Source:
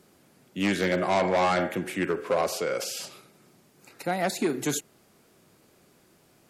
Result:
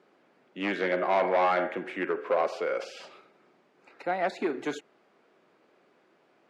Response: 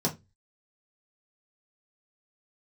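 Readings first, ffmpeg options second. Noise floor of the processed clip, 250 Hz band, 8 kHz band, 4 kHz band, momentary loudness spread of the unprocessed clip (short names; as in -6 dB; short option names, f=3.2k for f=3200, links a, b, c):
-66 dBFS, -5.5 dB, under -15 dB, -8.0 dB, 10 LU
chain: -af "highpass=350,lowpass=2.4k"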